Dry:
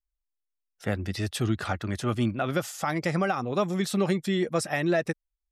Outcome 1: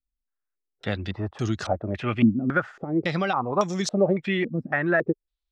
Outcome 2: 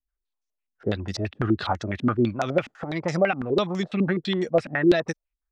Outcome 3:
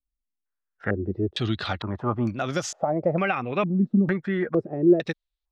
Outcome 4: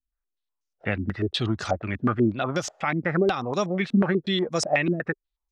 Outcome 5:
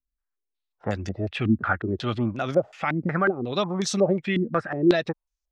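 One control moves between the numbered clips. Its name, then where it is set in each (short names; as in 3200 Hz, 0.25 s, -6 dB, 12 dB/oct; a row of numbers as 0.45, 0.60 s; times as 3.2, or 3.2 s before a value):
stepped low-pass, rate: 3.6, 12, 2.2, 8.2, 5.5 Hz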